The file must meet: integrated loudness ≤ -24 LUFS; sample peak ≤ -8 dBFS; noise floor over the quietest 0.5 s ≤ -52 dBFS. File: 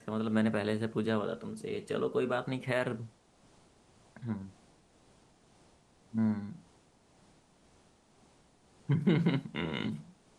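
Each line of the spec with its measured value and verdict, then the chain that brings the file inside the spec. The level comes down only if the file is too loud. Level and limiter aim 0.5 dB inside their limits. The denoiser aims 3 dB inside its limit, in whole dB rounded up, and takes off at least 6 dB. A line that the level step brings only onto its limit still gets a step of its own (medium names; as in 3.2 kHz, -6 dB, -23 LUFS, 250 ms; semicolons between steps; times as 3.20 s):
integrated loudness -33.5 LUFS: pass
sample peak -16.0 dBFS: pass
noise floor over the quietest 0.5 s -64 dBFS: pass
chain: none needed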